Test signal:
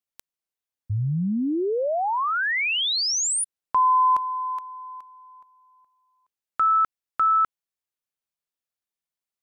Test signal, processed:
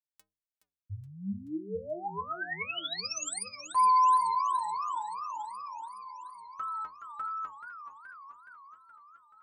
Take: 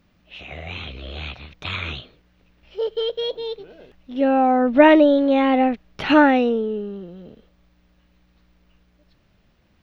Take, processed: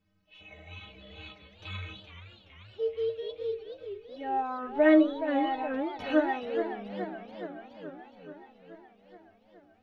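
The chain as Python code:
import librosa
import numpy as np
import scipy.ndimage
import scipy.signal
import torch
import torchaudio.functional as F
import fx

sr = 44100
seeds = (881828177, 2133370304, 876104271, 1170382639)

y = fx.stiff_resonator(x, sr, f0_hz=93.0, decay_s=0.4, stiffness=0.03)
y = fx.echo_warbled(y, sr, ms=426, feedback_pct=67, rate_hz=2.8, cents=183, wet_db=-10.0)
y = F.gain(torch.from_numpy(y), -3.0).numpy()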